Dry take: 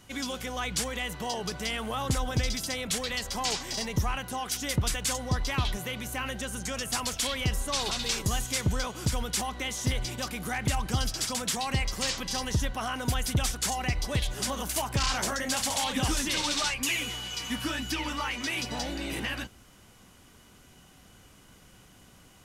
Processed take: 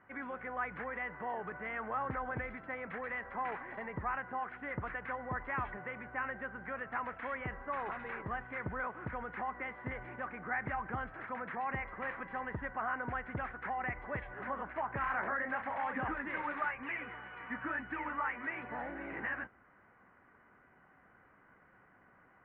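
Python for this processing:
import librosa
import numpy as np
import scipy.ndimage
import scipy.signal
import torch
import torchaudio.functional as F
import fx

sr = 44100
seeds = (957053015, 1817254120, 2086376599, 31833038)

y = scipy.signal.sosfilt(scipy.signal.butter(8, 1900.0, 'lowpass', fs=sr, output='sos'), x)
y = fx.tilt_eq(y, sr, slope=4.0)
y = y * librosa.db_to_amplitude(-2.5)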